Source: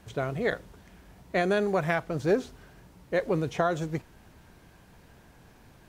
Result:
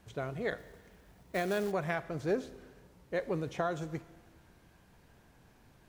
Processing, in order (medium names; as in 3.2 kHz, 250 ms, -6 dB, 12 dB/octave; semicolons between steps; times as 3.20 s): Schroeder reverb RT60 1.5 s, combs from 27 ms, DRR 16 dB; 0.58–1.72 s: short-mantissa float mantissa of 2-bit; trim -7 dB